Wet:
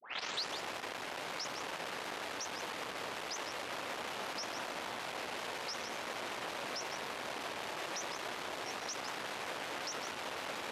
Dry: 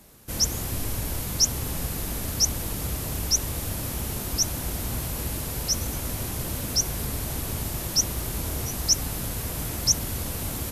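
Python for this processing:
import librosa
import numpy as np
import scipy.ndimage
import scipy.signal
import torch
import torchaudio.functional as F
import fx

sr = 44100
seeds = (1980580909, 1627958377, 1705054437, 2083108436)

y = fx.tape_start_head(x, sr, length_s=0.54)
y = fx.tube_stage(y, sr, drive_db=35.0, bias=0.65)
y = fx.bandpass_edges(y, sr, low_hz=600.0, high_hz=3100.0)
y = y + 10.0 ** (-8.0 / 20.0) * np.pad(y, (int(155 * sr / 1000.0), 0))[:len(y)]
y = fx.vibrato_shape(y, sr, shape='saw_down', rate_hz=5.4, depth_cents=100.0)
y = F.gain(torch.from_numpy(y), 7.0).numpy()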